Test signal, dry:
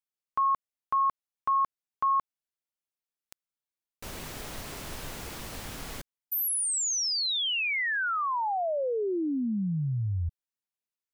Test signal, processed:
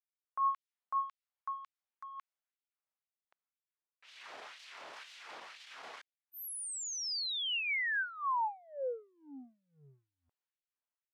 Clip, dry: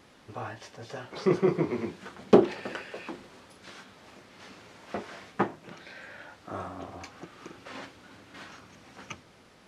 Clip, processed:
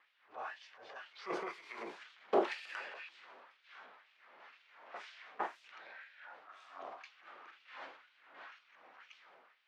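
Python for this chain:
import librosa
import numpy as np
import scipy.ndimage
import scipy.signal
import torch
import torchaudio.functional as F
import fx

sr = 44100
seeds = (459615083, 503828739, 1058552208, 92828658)

y = fx.env_lowpass(x, sr, base_hz=2000.0, full_db=-28.5)
y = fx.transient(y, sr, attack_db=-7, sustain_db=5)
y = fx.filter_lfo_highpass(y, sr, shape='sine', hz=2.0, low_hz=600.0, high_hz=3200.0, q=1.2)
y = fx.high_shelf(y, sr, hz=4900.0, db=-10.0)
y = y * 10.0 ** (-4.5 / 20.0)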